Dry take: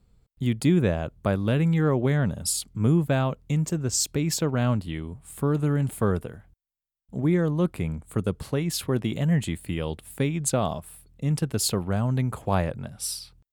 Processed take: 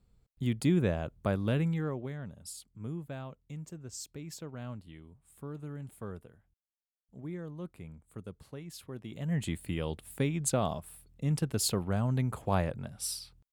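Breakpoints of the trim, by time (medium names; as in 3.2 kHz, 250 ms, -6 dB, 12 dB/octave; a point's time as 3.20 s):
1.57 s -6 dB
2.17 s -18 dB
9.01 s -18 dB
9.48 s -5 dB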